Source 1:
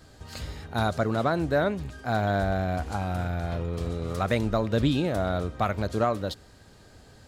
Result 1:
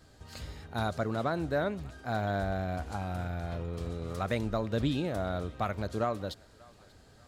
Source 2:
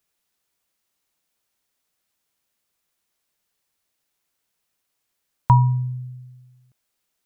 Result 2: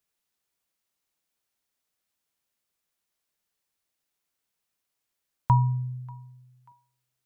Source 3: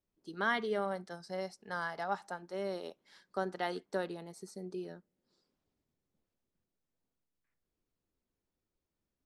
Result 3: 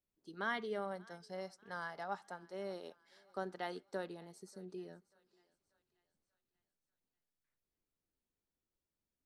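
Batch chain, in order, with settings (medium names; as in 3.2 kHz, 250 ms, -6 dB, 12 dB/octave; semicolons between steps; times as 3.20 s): thinning echo 588 ms, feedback 51%, high-pass 630 Hz, level -23 dB; trim -6 dB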